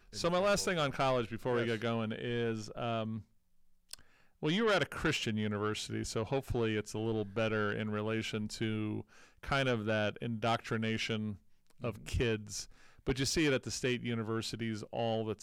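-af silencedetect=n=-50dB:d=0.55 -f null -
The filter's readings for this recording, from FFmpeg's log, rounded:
silence_start: 3.22
silence_end: 3.91 | silence_duration: 0.70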